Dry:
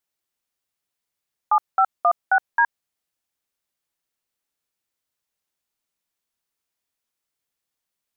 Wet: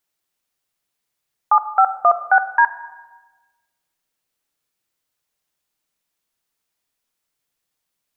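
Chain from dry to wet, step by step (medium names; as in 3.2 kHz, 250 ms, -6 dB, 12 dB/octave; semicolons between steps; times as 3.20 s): simulated room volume 940 m³, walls mixed, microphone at 0.49 m; trim +4.5 dB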